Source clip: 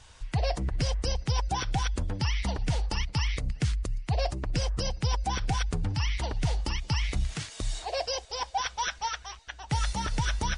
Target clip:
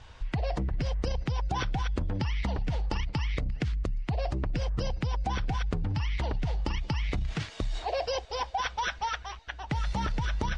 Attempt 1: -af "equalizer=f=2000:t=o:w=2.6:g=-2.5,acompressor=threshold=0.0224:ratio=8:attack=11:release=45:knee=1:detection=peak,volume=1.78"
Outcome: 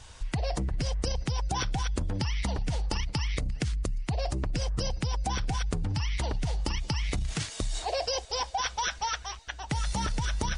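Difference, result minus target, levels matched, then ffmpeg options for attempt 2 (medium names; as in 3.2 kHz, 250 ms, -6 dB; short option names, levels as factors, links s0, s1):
4 kHz band +4.0 dB
-af "lowpass=3300,equalizer=f=2000:t=o:w=2.6:g=-2.5,acompressor=threshold=0.0224:ratio=8:attack=11:release=45:knee=1:detection=peak,volume=1.78"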